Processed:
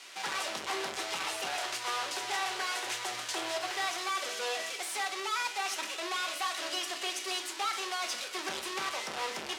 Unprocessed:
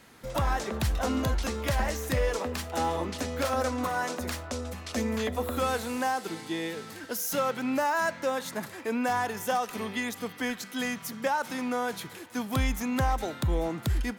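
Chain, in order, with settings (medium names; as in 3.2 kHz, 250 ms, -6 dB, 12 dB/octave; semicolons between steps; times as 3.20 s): square wave that keeps the level; tilt shelf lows -8 dB, about 1.1 kHz; wide varispeed 1.48×; gain riding 0.5 s; hard clipper -29 dBFS, distortion -3 dB; band-pass 560–7900 Hz; reverberation, pre-delay 5 ms, DRR 4.5 dB; trim -1.5 dB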